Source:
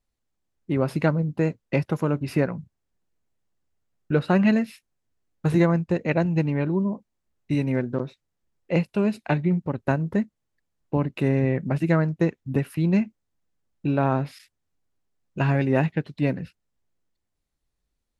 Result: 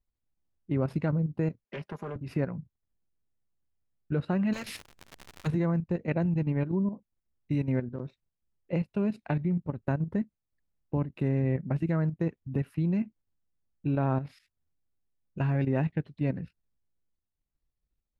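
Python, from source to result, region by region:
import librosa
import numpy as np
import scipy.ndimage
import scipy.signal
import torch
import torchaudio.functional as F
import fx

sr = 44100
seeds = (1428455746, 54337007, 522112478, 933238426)

y = fx.chain(x, sr, fx.highpass(hz=520.0, slope=6),
    fx.comb(ms=4.9, depth=0.81),
    fx.doppler_dist(depth_ms=0.41), at=(1.64, 2.16))
y = fx.high_shelf(y, sr, hz=2900.0, db=5.5, at=(4.52, 5.46), fade=0.02)
y = fx.dmg_crackle(y, sr, seeds[0], per_s=140.0, level_db=-36.0, at=(4.52, 5.46), fade=0.02)
y = fx.spectral_comp(y, sr, ratio=4.0, at=(4.52, 5.46), fade=0.02)
y = fx.low_shelf(y, sr, hz=200.0, db=8.0)
y = fx.level_steps(y, sr, step_db=10)
y = fx.high_shelf(y, sr, hz=4800.0, db=-9.5)
y = y * librosa.db_to_amplitude(-6.0)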